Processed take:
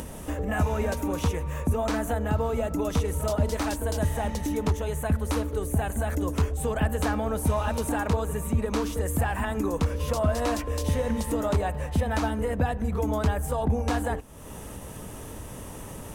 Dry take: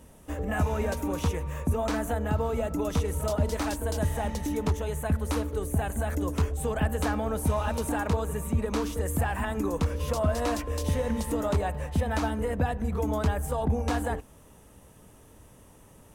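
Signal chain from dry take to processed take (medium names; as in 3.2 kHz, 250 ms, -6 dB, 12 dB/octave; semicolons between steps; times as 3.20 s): upward compressor, threshold -28 dBFS; trim +1.5 dB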